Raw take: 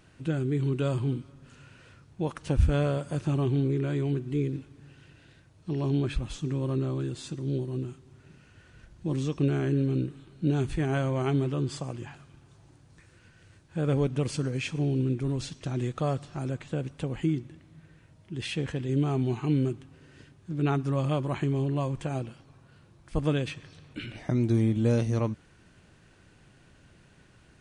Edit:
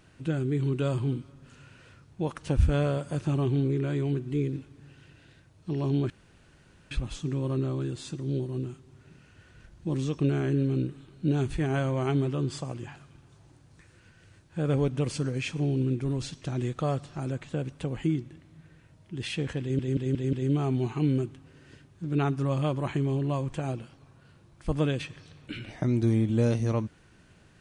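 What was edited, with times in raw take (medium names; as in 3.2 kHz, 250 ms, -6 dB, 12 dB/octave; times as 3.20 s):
6.10 s: insert room tone 0.81 s
18.80 s: stutter 0.18 s, 5 plays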